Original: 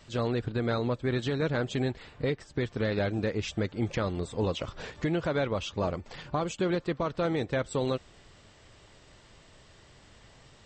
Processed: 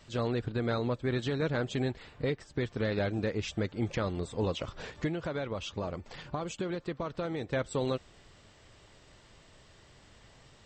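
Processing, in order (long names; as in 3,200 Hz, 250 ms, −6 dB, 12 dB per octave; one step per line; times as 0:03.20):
0:05.07–0:07.53: downward compressor, threshold −29 dBFS, peak gain reduction 5.5 dB
level −2 dB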